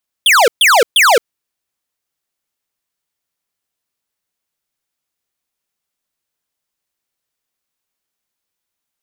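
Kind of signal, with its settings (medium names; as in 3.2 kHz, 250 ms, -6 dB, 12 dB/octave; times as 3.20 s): burst of laser zaps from 3.6 kHz, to 420 Hz, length 0.22 s square, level -8.5 dB, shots 3, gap 0.13 s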